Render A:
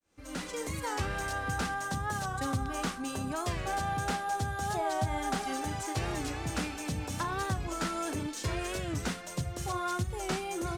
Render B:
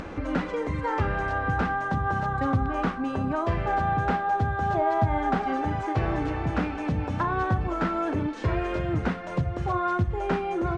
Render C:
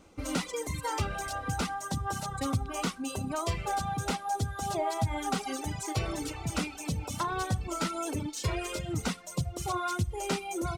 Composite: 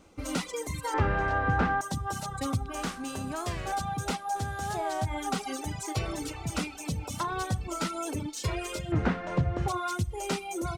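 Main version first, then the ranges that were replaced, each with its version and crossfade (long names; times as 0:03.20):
C
0:00.94–0:01.81: punch in from B
0:02.75–0:03.72: punch in from A
0:04.36–0:05.05: punch in from A
0:08.92–0:09.68: punch in from B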